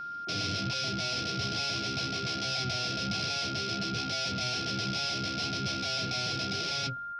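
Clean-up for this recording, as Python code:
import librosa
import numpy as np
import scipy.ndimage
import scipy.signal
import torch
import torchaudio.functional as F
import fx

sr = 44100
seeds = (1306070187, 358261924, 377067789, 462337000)

y = fx.notch(x, sr, hz=1400.0, q=30.0)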